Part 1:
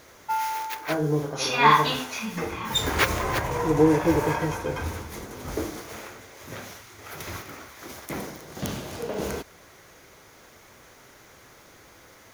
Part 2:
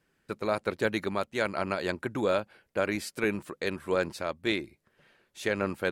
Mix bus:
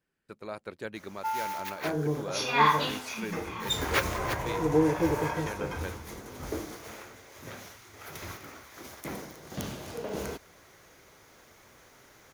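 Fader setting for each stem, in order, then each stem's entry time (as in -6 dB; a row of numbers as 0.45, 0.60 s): -5.0, -10.5 dB; 0.95, 0.00 s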